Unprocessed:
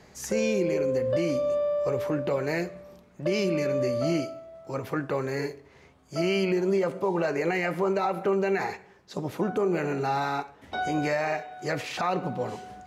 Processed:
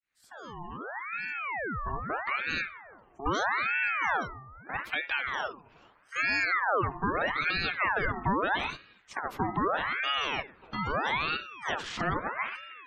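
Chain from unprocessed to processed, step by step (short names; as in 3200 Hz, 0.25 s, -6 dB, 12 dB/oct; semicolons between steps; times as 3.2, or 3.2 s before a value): opening faded in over 2.84 s; spectral gate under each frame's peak -25 dB strong; ring modulator with a swept carrier 1300 Hz, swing 60%, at 0.79 Hz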